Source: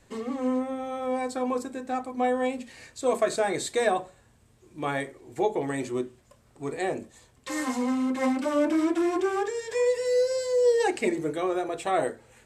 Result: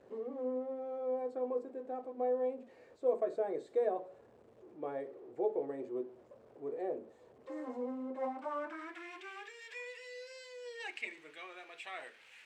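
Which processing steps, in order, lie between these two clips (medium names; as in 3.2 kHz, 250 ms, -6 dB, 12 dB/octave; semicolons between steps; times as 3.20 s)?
jump at every zero crossing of -40 dBFS; band-pass sweep 480 Hz -> 2.5 kHz, 8.03–9.12 s; trim -5.5 dB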